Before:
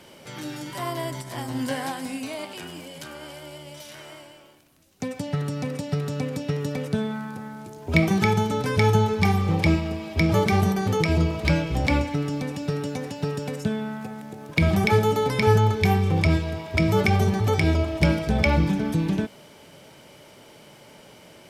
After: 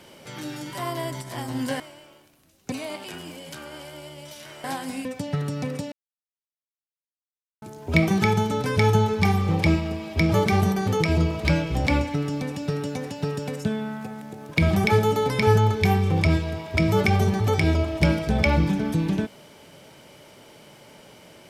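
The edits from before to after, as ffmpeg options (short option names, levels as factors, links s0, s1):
-filter_complex "[0:a]asplit=7[s0][s1][s2][s3][s4][s5][s6];[s0]atrim=end=1.802[s7];[s1]atrim=start=4.128:end=5.052[s8];[s2]atrim=start=2.208:end=4.132[s9];[s3]atrim=start=1.798:end=2.212[s10];[s4]atrim=start=5.048:end=5.92,asetpts=PTS-STARTPTS,afade=t=out:st=0.868:d=0.004:c=hsin[s11];[s5]atrim=start=5.92:end=7.62,asetpts=PTS-STARTPTS,volume=0[s12];[s6]atrim=start=7.62,asetpts=PTS-STARTPTS,afade=t=in:d=0.004:c=hsin[s13];[s7][s8]acrossfade=d=0.004:c1=hsin:c2=hsin[s14];[s14][s9]acrossfade=d=0.004:c1=hsin:c2=hsin[s15];[s15][s10]acrossfade=d=0.004:c1=hsin:c2=hsin[s16];[s11][s12][s13]concat=n=3:v=0:a=1[s17];[s16][s17]acrossfade=d=0.004:c1=hsin:c2=hsin"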